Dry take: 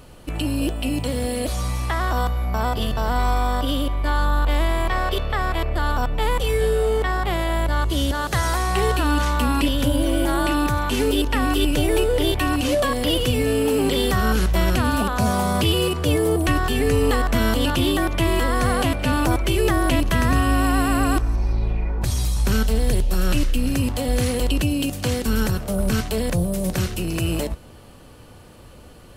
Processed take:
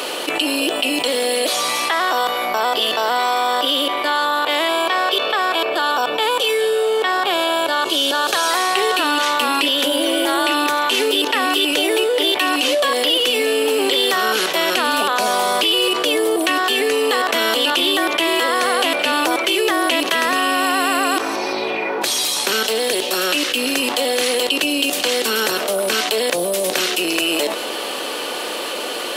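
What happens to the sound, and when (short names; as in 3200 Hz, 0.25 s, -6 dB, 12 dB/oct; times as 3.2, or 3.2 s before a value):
4.68–8.51 Butterworth band-stop 2000 Hz, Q 7.3
whole clip: HPF 350 Hz 24 dB/oct; bell 3300 Hz +7.5 dB 1.2 oct; fast leveller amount 70%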